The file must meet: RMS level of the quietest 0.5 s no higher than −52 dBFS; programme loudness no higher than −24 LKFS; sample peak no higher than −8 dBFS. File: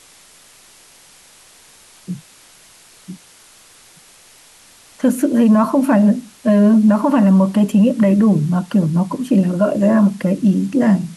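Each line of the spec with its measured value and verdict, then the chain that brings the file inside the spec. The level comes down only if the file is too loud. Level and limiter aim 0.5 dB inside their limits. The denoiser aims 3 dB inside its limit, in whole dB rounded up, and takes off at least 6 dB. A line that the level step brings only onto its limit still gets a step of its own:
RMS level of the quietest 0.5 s −47 dBFS: out of spec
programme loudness −14.5 LKFS: out of spec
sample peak −5.5 dBFS: out of spec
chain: level −10 dB

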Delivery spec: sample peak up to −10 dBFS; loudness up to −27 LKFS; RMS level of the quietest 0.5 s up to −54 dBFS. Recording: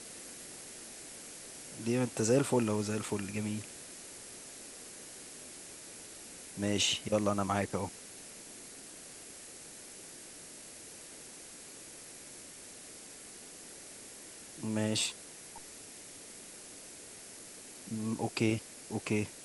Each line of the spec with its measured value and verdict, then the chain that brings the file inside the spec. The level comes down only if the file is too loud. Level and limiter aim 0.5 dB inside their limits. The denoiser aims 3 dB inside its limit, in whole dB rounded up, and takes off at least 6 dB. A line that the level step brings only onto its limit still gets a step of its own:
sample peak −15.5 dBFS: in spec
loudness −38.0 LKFS: in spec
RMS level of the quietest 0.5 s −50 dBFS: out of spec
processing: broadband denoise 7 dB, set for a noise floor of −50 dBFS

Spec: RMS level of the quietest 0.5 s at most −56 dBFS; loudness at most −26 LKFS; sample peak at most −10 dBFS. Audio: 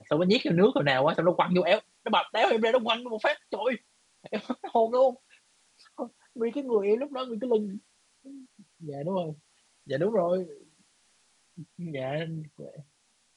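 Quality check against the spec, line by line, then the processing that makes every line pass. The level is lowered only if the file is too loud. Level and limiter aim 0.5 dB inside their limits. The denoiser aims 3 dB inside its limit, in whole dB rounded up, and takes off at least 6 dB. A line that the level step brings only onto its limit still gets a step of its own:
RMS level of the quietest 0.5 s −68 dBFS: in spec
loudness −27.0 LKFS: in spec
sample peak −9.5 dBFS: out of spec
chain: brickwall limiter −10.5 dBFS

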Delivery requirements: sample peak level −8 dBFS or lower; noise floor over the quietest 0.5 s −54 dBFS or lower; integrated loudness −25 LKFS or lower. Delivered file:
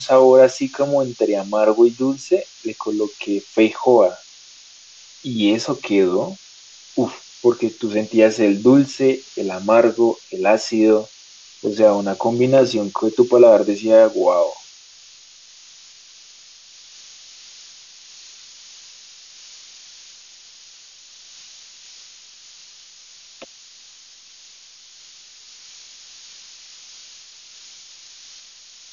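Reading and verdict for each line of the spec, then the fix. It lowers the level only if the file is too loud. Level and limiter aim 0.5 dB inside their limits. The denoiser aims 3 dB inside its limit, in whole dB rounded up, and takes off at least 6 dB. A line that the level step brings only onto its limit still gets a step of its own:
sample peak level −1.5 dBFS: out of spec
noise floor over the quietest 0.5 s −46 dBFS: out of spec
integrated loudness −17.0 LKFS: out of spec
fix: level −8.5 dB

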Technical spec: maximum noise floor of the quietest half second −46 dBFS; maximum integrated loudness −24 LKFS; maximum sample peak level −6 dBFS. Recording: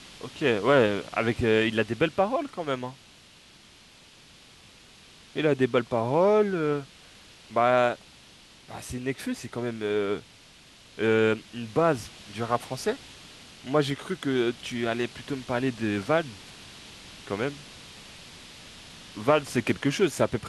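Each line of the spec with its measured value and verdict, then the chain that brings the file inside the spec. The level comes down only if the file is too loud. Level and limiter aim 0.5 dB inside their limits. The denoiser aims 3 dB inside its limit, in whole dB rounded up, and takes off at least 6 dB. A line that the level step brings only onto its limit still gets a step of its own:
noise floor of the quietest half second −53 dBFS: in spec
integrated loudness −26.5 LKFS: in spec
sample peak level −7.5 dBFS: in spec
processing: no processing needed

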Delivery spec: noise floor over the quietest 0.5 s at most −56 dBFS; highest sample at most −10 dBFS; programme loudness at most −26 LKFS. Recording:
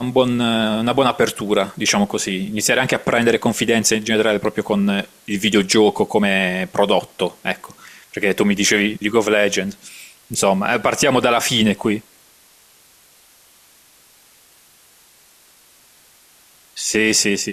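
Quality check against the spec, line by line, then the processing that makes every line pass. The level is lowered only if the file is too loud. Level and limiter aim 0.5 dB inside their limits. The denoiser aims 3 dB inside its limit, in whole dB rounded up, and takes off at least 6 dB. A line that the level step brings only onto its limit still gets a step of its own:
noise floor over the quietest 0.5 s −51 dBFS: out of spec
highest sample −3.0 dBFS: out of spec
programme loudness −17.5 LKFS: out of spec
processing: level −9 dB

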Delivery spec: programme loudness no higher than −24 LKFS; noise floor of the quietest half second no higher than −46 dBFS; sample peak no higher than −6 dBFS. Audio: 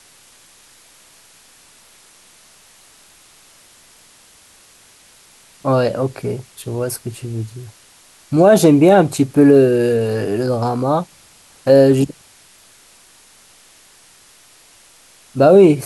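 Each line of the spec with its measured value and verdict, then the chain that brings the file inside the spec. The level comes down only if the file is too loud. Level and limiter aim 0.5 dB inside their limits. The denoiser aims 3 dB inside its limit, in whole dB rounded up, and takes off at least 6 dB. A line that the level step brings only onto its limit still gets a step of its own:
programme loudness −15.0 LKFS: out of spec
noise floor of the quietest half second −48 dBFS: in spec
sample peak −1.5 dBFS: out of spec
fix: level −9.5 dB

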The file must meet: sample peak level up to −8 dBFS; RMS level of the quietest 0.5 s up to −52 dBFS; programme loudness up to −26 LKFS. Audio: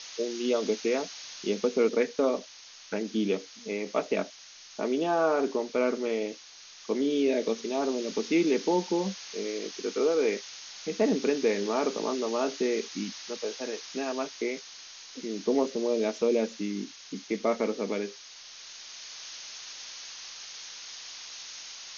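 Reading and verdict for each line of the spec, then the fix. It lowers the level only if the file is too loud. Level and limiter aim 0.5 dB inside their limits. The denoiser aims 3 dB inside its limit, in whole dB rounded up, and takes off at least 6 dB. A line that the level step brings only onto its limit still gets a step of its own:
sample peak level −13.0 dBFS: in spec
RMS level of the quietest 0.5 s −50 dBFS: out of spec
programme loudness −30.0 LKFS: in spec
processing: broadband denoise 6 dB, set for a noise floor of −50 dBFS

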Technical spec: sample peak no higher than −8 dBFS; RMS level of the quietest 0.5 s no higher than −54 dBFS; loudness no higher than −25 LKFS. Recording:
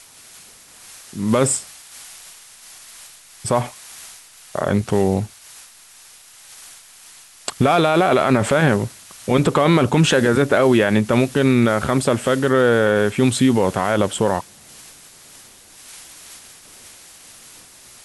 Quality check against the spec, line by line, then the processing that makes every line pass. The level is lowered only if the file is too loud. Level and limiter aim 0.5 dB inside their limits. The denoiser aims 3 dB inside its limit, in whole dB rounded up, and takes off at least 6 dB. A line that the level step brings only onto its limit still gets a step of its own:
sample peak −5.5 dBFS: out of spec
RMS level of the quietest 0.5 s −46 dBFS: out of spec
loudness −17.5 LKFS: out of spec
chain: broadband denoise 6 dB, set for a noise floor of −46 dBFS
level −8 dB

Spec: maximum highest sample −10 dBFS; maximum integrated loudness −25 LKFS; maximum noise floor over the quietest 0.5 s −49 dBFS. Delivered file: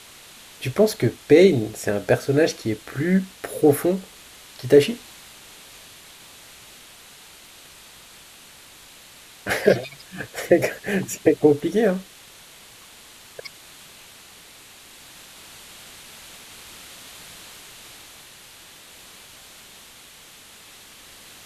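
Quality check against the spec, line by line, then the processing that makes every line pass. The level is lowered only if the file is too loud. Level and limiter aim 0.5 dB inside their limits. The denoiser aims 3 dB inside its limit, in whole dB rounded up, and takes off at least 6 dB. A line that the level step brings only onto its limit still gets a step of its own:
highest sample −3.0 dBFS: out of spec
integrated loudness −20.5 LKFS: out of spec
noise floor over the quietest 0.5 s −47 dBFS: out of spec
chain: level −5 dB
brickwall limiter −10.5 dBFS

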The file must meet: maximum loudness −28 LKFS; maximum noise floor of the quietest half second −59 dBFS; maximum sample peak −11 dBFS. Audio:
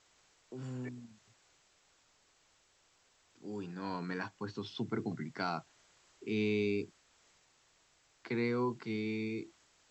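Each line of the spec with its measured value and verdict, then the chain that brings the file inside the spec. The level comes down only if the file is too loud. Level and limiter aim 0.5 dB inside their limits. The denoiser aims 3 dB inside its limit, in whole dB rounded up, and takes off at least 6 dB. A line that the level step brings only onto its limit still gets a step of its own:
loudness −38.0 LKFS: in spec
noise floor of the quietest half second −71 dBFS: in spec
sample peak −22.0 dBFS: in spec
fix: no processing needed

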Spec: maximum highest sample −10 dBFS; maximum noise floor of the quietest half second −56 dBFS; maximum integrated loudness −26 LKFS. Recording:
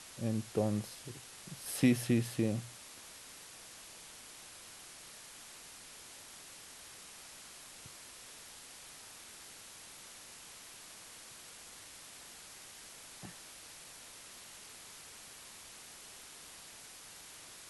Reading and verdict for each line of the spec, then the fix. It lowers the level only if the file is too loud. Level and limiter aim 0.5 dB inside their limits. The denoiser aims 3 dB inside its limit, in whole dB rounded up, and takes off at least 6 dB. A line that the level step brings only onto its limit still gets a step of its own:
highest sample −16.0 dBFS: in spec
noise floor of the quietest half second −53 dBFS: out of spec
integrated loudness −42.0 LKFS: in spec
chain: broadband denoise 6 dB, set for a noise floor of −53 dBFS

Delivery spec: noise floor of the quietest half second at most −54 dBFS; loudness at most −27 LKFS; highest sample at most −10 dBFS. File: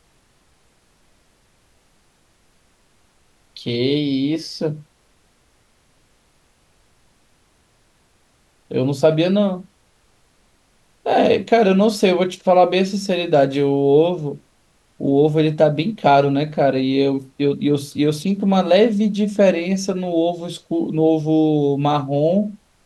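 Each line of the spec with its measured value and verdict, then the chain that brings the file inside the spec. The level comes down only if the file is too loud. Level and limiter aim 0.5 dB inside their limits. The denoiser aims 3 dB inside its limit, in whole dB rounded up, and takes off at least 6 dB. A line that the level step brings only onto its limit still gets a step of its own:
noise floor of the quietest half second −59 dBFS: in spec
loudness −18.0 LKFS: out of spec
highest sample −3.5 dBFS: out of spec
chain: level −9.5 dB

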